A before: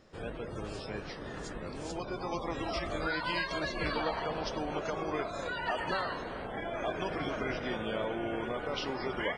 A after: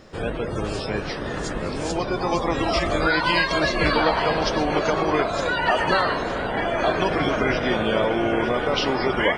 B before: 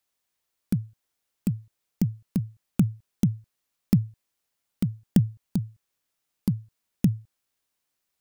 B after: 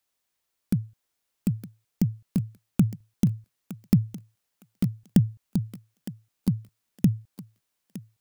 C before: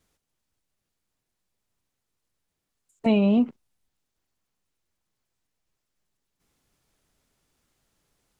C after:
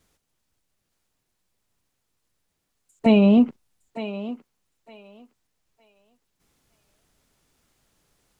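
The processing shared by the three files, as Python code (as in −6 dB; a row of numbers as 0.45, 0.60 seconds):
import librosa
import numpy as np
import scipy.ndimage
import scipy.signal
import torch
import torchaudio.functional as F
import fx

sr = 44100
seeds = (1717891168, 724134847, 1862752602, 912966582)

y = fx.echo_thinned(x, sr, ms=912, feedback_pct=24, hz=420.0, wet_db=-10.5)
y = y * 10.0 ** (-6 / 20.0) / np.max(np.abs(y))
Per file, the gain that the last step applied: +13.0, +0.5, +4.5 decibels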